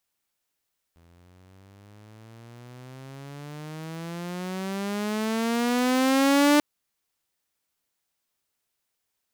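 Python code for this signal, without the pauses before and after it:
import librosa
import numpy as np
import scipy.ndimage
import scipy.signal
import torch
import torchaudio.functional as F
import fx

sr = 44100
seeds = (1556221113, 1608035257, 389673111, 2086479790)

y = fx.riser_tone(sr, length_s=5.64, level_db=-13.0, wave='saw', hz=83.3, rise_st=22.0, swell_db=39.0)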